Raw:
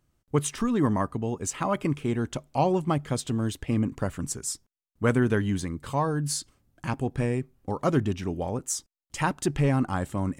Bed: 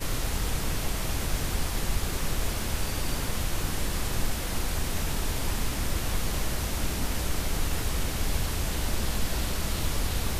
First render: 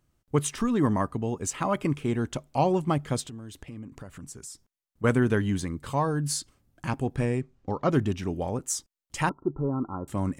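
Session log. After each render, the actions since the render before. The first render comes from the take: 3.22–5.04 s: compression 4:1, threshold -40 dBFS; 7.25–7.90 s: low-pass 11 kHz -> 4.7 kHz 24 dB/octave; 9.29–10.08 s: rippled Chebyshev low-pass 1.4 kHz, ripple 9 dB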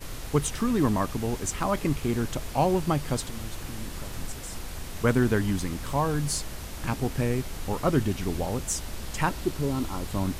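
add bed -8 dB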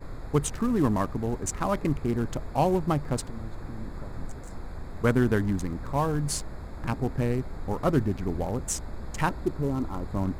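local Wiener filter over 15 samples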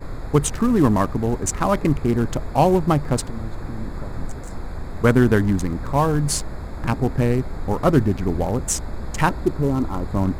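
trim +7.5 dB; peak limiter -3 dBFS, peak gain reduction 1 dB

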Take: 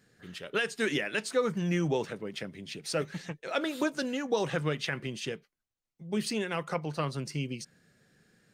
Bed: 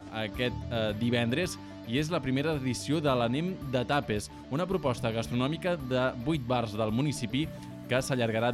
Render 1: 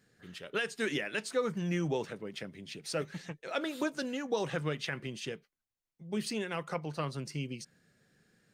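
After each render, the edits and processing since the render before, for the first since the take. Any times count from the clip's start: trim -3.5 dB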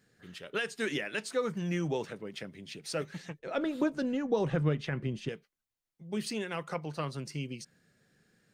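3.39–5.29 s: tilt EQ -3 dB/octave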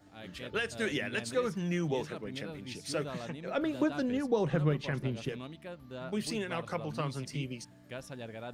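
add bed -15 dB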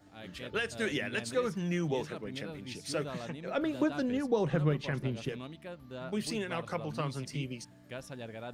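no audible change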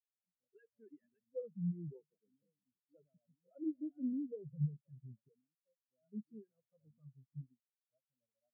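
peak limiter -26.5 dBFS, peak gain reduction 9.5 dB; spectral contrast expander 4:1

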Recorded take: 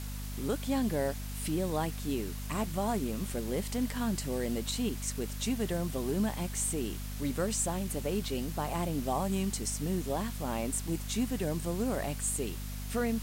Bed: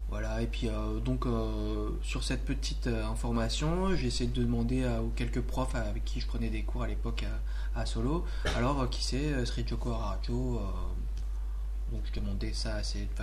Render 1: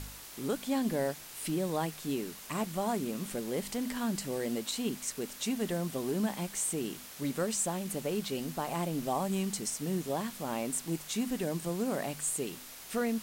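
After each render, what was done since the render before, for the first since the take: de-hum 50 Hz, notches 5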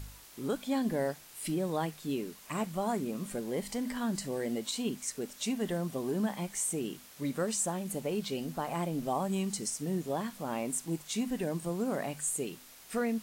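noise print and reduce 6 dB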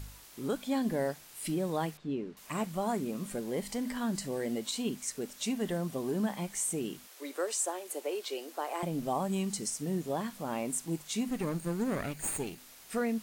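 1.97–2.37 s: tape spacing loss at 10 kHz 28 dB; 7.07–8.83 s: steep high-pass 320 Hz 48 dB/octave; 11.29–12.58 s: comb filter that takes the minimum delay 0.45 ms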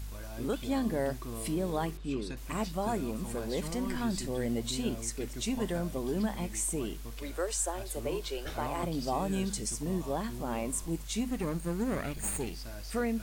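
add bed -9.5 dB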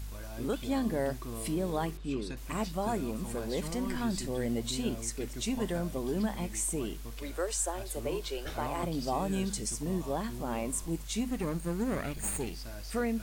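no audible change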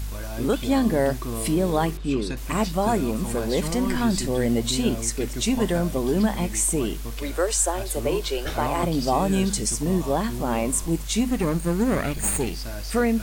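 trim +10 dB

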